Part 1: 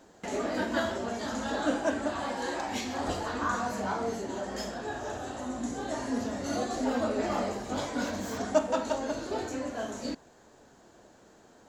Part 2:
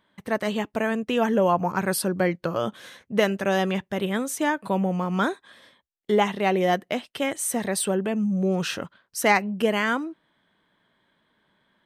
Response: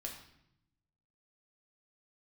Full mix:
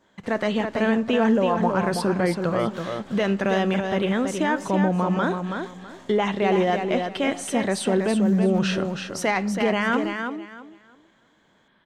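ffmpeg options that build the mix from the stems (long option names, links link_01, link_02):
-filter_complex "[0:a]aeval=exprs='(tanh(70.8*val(0)+0.55)-tanh(0.55))/70.8':channel_layout=same,volume=-8dB[link_01];[1:a]lowpass=5700,alimiter=limit=-17.5dB:level=0:latency=1:release=28,adynamicequalizer=threshold=0.00794:dfrequency=1900:dqfactor=0.7:tfrequency=1900:tqfactor=0.7:attack=5:release=100:ratio=0.375:range=1.5:mode=cutabove:tftype=highshelf,volume=2.5dB,asplit=3[link_02][link_03][link_04];[link_03]volume=-10.5dB[link_05];[link_04]volume=-4.5dB[link_06];[2:a]atrim=start_sample=2205[link_07];[link_05][link_07]afir=irnorm=-1:irlink=0[link_08];[link_06]aecho=0:1:327|654|981|1308:1|0.23|0.0529|0.0122[link_09];[link_01][link_02][link_08][link_09]amix=inputs=4:normalize=0"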